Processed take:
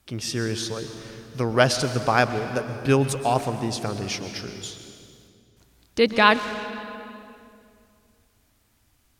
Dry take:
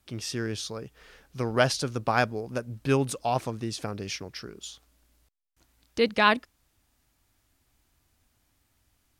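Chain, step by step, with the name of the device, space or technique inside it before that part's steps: saturated reverb return (on a send at -7 dB: reverb RT60 2.3 s, pre-delay 0.108 s + soft clip -25 dBFS, distortion -10 dB); on the sum: gain +4.5 dB

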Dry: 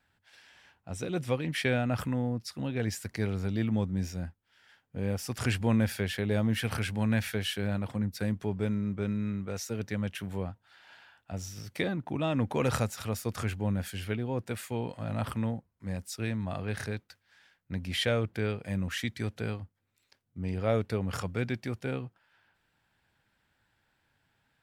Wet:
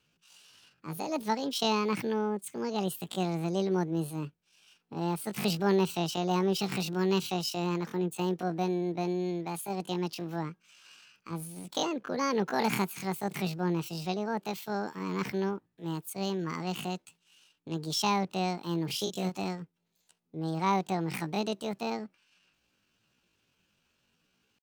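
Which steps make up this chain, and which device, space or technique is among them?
18.86–19.46 doubler 38 ms -6.5 dB; chipmunk voice (pitch shift +9.5 st)

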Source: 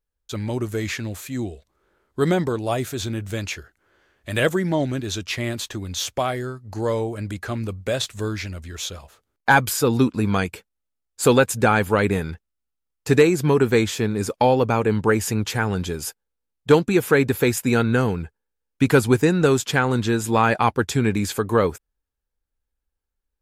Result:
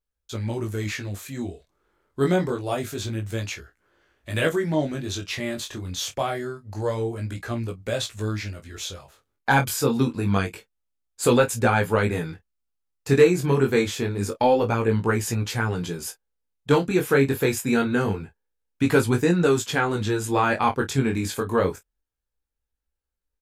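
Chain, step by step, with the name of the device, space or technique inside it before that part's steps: double-tracked vocal (doubler 29 ms -12 dB; chorus 0.26 Hz, delay 17 ms, depth 5.3 ms)

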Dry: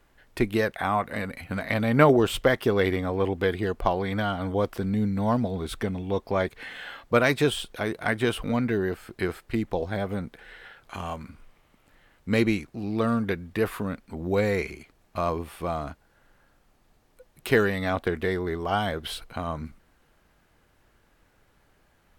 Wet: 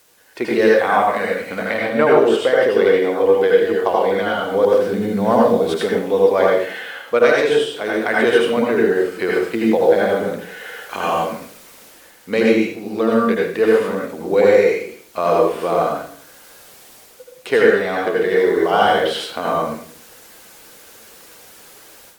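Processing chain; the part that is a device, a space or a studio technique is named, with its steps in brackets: filmed off a television (BPF 300–7300 Hz; bell 480 Hz +6.5 dB 0.45 oct; reverb RT60 0.55 s, pre-delay 74 ms, DRR -3.5 dB; white noise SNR 33 dB; AGC; gain -1 dB; AAC 96 kbps 48000 Hz)

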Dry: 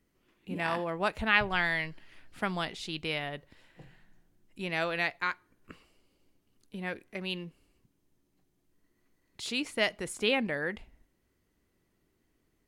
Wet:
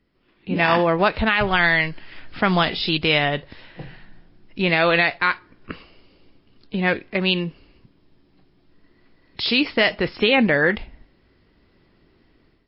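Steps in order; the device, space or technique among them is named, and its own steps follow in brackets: low-bitrate web radio (AGC gain up to 10.5 dB; limiter -12 dBFS, peak gain reduction 10.5 dB; gain +6 dB; MP3 24 kbps 12000 Hz)

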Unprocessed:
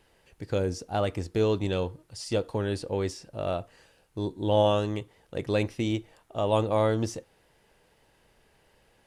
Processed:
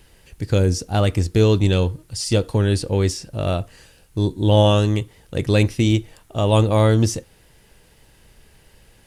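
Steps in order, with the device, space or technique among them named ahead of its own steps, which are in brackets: smiley-face EQ (low shelf 140 Hz +9 dB; bell 730 Hz -5 dB 1.8 oct; high shelf 5300 Hz +7 dB); gain +9 dB

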